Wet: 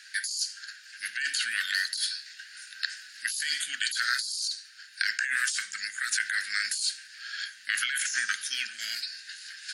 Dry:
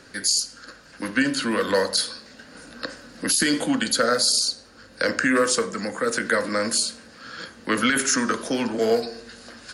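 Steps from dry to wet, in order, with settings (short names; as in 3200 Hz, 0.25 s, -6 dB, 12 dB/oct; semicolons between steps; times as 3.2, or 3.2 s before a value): elliptic high-pass 1600 Hz, stop band 40 dB; negative-ratio compressor -29 dBFS, ratio -1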